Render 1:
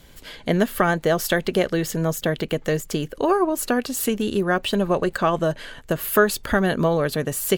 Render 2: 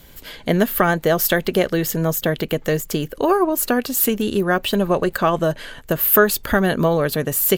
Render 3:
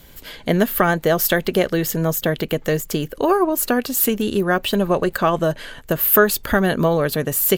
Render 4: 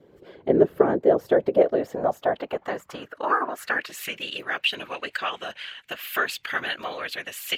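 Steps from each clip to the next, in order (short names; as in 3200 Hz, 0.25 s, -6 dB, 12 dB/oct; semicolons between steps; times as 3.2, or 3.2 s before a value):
bell 14000 Hz +14.5 dB 0.25 oct; gain +2.5 dB
nothing audible
vibrato 1.2 Hz 31 cents; whisperiser; band-pass sweep 410 Hz -> 2600 Hz, 1.09–4.32; gain +4 dB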